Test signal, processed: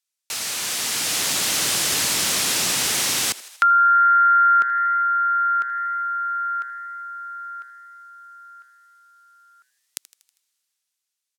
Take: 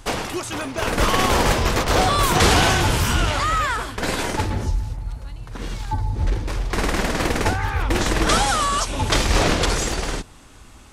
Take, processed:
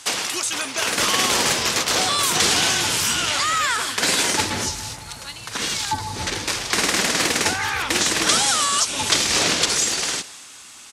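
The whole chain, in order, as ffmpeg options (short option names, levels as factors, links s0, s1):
-filter_complex "[0:a]highpass=150,lowpass=7200,aemphasis=mode=production:type=50fm,dynaudnorm=f=200:g=11:m=3.98,tiltshelf=f=970:g=-8,asplit=2[s0][s1];[s1]asplit=5[s2][s3][s4][s5][s6];[s2]adelay=80,afreqshift=130,volume=0.1[s7];[s3]adelay=160,afreqshift=260,volume=0.0569[s8];[s4]adelay=240,afreqshift=390,volume=0.0324[s9];[s5]adelay=320,afreqshift=520,volume=0.0186[s10];[s6]adelay=400,afreqshift=650,volume=0.0106[s11];[s7][s8][s9][s10][s11]amix=inputs=5:normalize=0[s12];[s0][s12]amix=inputs=2:normalize=0,acrossover=split=480[s13][s14];[s14]acompressor=threshold=0.0708:ratio=2[s15];[s13][s15]amix=inputs=2:normalize=0"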